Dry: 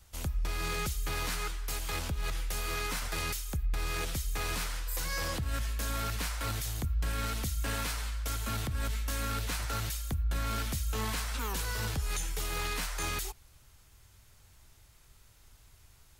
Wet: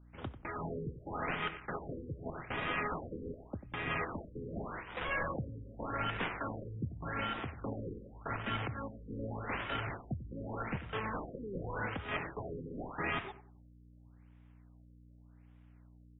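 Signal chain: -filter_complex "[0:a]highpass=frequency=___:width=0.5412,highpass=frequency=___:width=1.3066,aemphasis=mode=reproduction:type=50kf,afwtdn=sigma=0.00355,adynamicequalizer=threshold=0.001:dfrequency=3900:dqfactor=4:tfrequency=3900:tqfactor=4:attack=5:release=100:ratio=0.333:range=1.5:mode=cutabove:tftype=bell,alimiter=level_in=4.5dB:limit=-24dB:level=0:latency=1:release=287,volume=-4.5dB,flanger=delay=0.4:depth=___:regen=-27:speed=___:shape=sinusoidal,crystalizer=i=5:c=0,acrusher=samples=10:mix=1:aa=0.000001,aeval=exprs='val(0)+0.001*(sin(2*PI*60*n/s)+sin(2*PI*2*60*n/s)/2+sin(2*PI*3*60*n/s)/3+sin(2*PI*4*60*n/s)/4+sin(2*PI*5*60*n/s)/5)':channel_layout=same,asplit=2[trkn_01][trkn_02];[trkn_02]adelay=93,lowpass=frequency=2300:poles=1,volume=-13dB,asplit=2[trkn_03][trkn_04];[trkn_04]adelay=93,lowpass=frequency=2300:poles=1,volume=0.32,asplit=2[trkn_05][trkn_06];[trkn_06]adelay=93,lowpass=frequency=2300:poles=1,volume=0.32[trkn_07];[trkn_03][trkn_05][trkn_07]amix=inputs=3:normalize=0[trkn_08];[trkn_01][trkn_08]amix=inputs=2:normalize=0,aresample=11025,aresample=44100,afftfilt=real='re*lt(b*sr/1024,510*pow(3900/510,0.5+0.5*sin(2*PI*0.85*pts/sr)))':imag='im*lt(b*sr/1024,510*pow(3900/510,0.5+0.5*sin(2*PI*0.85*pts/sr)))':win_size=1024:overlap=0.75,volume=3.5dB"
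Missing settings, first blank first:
110, 110, 3.4, 1.3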